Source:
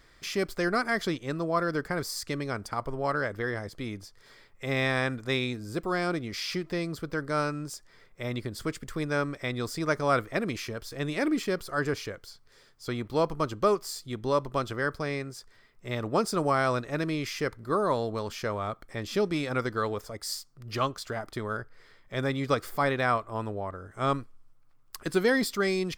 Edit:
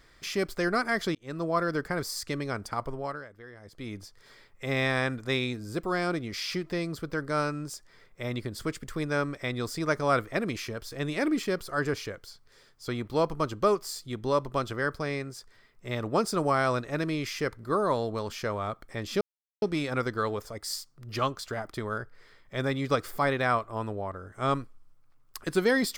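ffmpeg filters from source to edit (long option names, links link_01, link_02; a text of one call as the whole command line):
ffmpeg -i in.wav -filter_complex "[0:a]asplit=5[link_01][link_02][link_03][link_04][link_05];[link_01]atrim=end=1.15,asetpts=PTS-STARTPTS,afade=type=out:start_time=1.146:duration=0.004:curve=hsin[link_06];[link_02]atrim=start=1.15:end=3.25,asetpts=PTS-STARTPTS,afade=type=in:duration=0.29,afade=type=out:start_time=1.69:duration=0.41:silence=0.158489[link_07];[link_03]atrim=start=3.25:end=3.59,asetpts=PTS-STARTPTS,volume=-16dB[link_08];[link_04]atrim=start=3.59:end=19.21,asetpts=PTS-STARTPTS,afade=type=in:duration=0.41:silence=0.158489,afade=type=out:start_time=15.616:duration=0.004:curve=hsin,apad=pad_dur=0.41[link_09];[link_05]atrim=start=19.21,asetpts=PTS-STARTPTS,afade=type=in:duration=0.004:curve=hsin[link_10];[link_06][link_07][link_08][link_09][link_10]concat=n=5:v=0:a=1" out.wav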